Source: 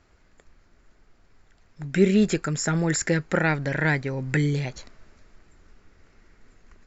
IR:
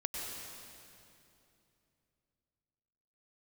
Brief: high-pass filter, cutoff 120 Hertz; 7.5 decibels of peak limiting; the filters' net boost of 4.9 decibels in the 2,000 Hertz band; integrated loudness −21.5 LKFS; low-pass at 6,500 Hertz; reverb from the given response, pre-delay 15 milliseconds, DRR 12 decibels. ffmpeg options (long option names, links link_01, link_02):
-filter_complex "[0:a]highpass=120,lowpass=6500,equalizer=frequency=2000:width_type=o:gain=6,alimiter=limit=-13dB:level=0:latency=1,asplit=2[link_01][link_02];[1:a]atrim=start_sample=2205,adelay=15[link_03];[link_02][link_03]afir=irnorm=-1:irlink=0,volume=-14.5dB[link_04];[link_01][link_04]amix=inputs=2:normalize=0,volume=3.5dB"